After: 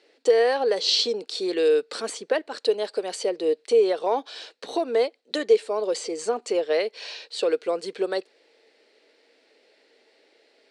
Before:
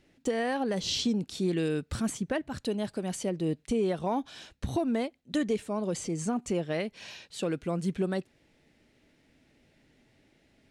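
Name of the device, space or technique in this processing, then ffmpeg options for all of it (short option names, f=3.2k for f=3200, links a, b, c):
phone speaker on a table: -af "highpass=f=390:w=0.5412,highpass=f=390:w=1.3066,equalizer=f=460:t=q:w=4:g=10,equalizer=f=4.4k:t=q:w=4:g=9,equalizer=f=6.6k:t=q:w=4:g=-5,lowpass=f=8.8k:w=0.5412,lowpass=f=8.8k:w=1.3066,volume=5.5dB"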